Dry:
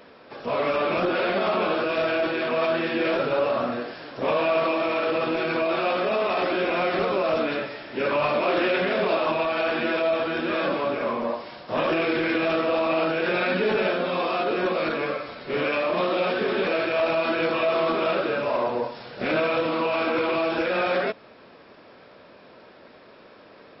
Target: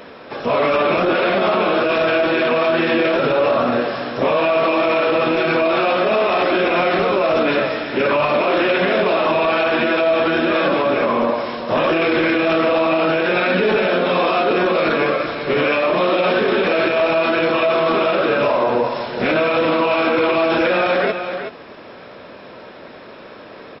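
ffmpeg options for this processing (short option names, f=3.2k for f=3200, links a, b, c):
-filter_complex "[0:a]bandreject=f=4.6k:w=11,asplit=2[a][b];[b]aecho=0:1:374:0.237[c];[a][c]amix=inputs=2:normalize=0,alimiter=level_in=18.5dB:limit=-1dB:release=50:level=0:latency=1,volume=-7.5dB"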